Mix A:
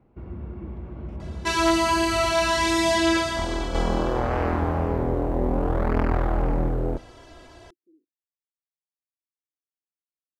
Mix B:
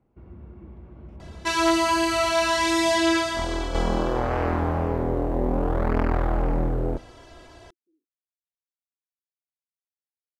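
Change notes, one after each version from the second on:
speech -12.0 dB; first sound -8.0 dB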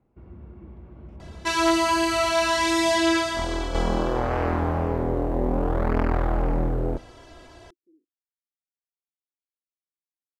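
speech +11.0 dB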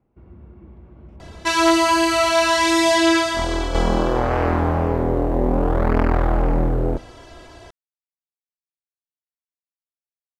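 speech: muted; second sound +5.0 dB

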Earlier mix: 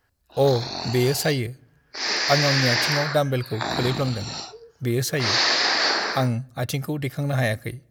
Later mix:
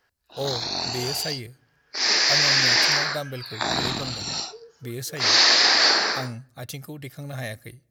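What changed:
speech -10.5 dB; master: add treble shelf 3.1 kHz +7 dB

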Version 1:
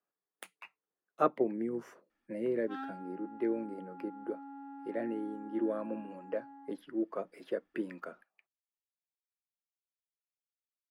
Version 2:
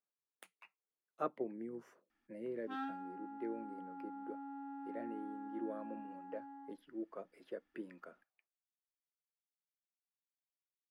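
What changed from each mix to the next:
speech -10.0 dB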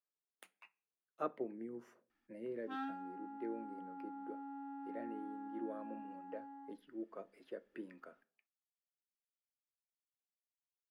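reverb: on, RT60 0.45 s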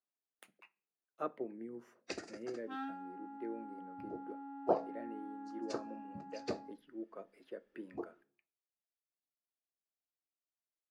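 first sound: unmuted

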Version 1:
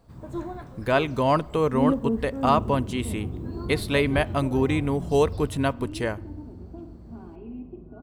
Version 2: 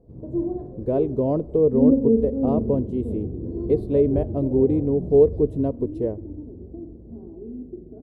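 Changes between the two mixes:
first sound: send +11.5 dB; master: add FFT filter 180 Hz 0 dB, 450 Hz +7 dB, 1.4 kHz -28 dB

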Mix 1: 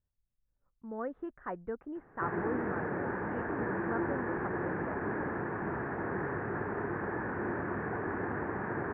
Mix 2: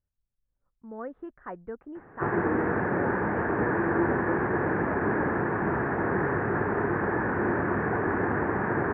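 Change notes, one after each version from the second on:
background +8.5 dB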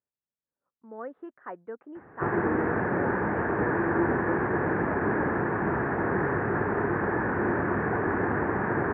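speech: add high-pass 280 Hz 12 dB/octave

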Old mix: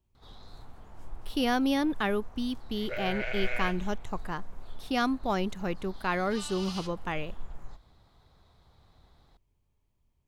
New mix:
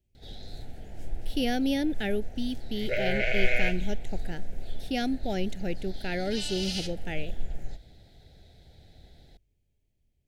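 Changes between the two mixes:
background +8.0 dB; master: add Butterworth band-stop 1.1 kHz, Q 1.1

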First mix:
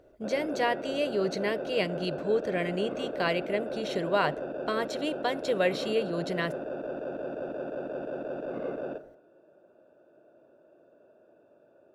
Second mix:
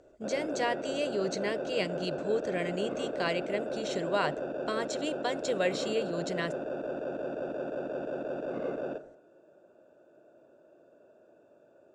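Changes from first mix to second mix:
speech -3.5 dB; master: add resonant low-pass 7.4 kHz, resonance Q 3.8

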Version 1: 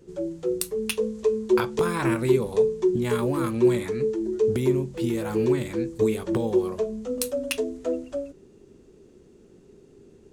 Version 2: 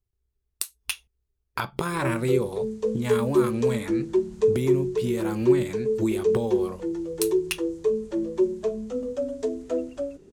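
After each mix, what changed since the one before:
background: entry +1.85 s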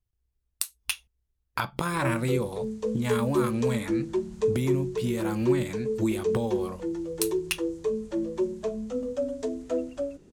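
master: add peaking EQ 400 Hz -9 dB 0.27 oct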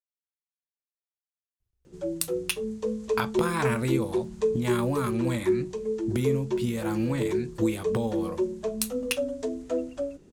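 speech: entry +1.60 s

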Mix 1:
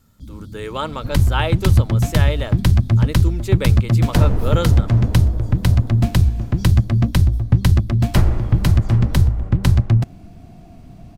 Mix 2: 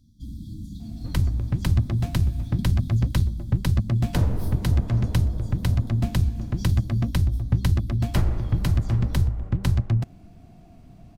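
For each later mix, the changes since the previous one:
speech: muted; second sound -7.5 dB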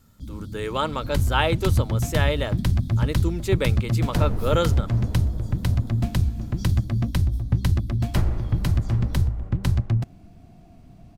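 speech: unmuted

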